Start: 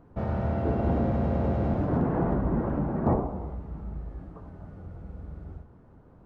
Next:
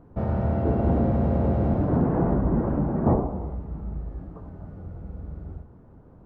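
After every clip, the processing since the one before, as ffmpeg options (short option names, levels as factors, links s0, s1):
-af "tiltshelf=f=1300:g=4"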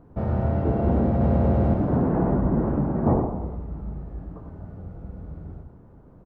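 -af "aecho=1:1:100:0.398"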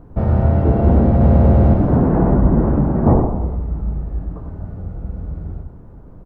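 -af "lowshelf=f=63:g=11,volume=2"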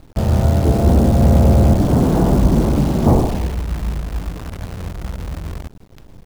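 -af "acrusher=bits=6:dc=4:mix=0:aa=0.000001"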